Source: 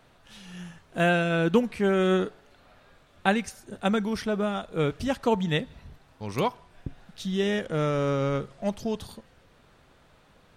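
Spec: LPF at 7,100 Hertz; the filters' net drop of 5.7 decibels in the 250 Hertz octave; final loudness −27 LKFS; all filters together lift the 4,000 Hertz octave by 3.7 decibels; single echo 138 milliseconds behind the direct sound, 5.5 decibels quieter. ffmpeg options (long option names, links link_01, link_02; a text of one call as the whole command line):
ffmpeg -i in.wav -af "lowpass=7100,equalizer=frequency=250:width_type=o:gain=-8.5,equalizer=frequency=4000:width_type=o:gain=5,aecho=1:1:138:0.531,volume=1dB" out.wav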